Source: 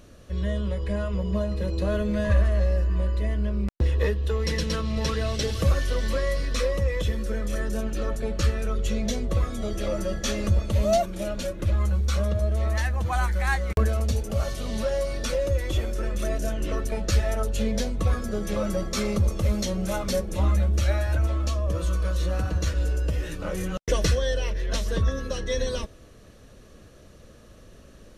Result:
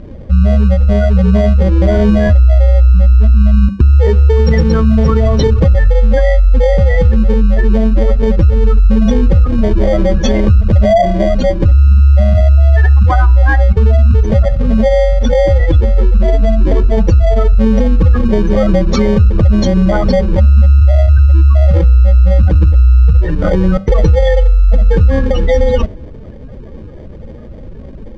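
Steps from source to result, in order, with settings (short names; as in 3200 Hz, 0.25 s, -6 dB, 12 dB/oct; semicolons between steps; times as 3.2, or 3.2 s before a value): spectral gate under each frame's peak -15 dB strong; de-hum 98.24 Hz, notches 10; in parallel at -8 dB: sample-and-hold 33×; on the sum: air absorption 150 m; on a send at -20 dB: reverb RT60 0.40 s, pre-delay 4 ms; on the sum: maximiser +19 dB; gain -1 dB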